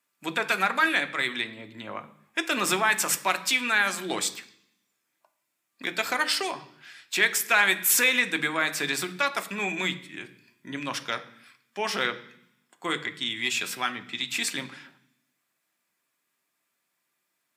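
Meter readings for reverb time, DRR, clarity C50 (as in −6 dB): 0.65 s, 7.5 dB, 16.0 dB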